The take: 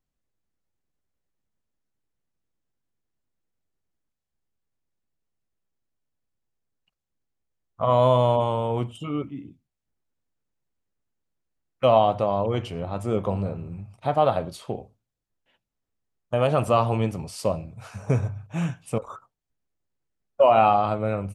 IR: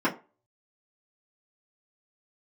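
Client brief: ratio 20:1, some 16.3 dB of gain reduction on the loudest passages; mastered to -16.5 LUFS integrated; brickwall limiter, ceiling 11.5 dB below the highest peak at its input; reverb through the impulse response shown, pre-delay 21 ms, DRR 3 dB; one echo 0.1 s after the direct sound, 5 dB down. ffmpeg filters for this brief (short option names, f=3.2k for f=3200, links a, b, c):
-filter_complex "[0:a]acompressor=threshold=-29dB:ratio=20,alimiter=level_in=4.5dB:limit=-24dB:level=0:latency=1,volume=-4.5dB,aecho=1:1:100:0.562,asplit=2[a][b];[1:a]atrim=start_sample=2205,adelay=21[c];[b][c]afir=irnorm=-1:irlink=0,volume=-16dB[d];[a][d]amix=inputs=2:normalize=0,volume=18.5dB"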